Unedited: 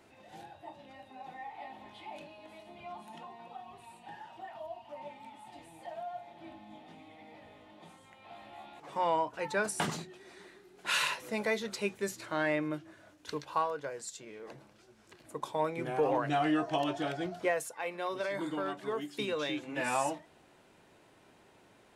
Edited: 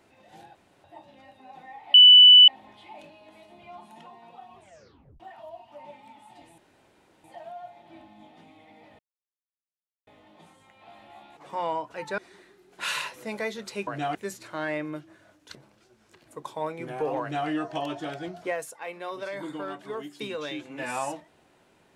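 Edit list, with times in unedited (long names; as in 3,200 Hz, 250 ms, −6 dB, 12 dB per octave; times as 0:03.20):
0:00.55: splice in room tone 0.29 s
0:01.65: insert tone 2,980 Hz −8 dBFS 0.54 s
0:03.73: tape stop 0.64 s
0:05.75: splice in room tone 0.66 s
0:07.50: splice in silence 1.08 s
0:09.61–0:10.24: remove
0:13.33–0:14.53: remove
0:16.18–0:16.46: duplicate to 0:11.93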